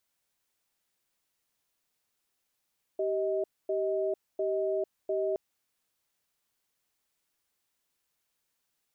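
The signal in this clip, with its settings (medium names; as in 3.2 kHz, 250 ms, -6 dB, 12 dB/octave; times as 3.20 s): cadence 388 Hz, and 630 Hz, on 0.45 s, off 0.25 s, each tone -29.5 dBFS 2.37 s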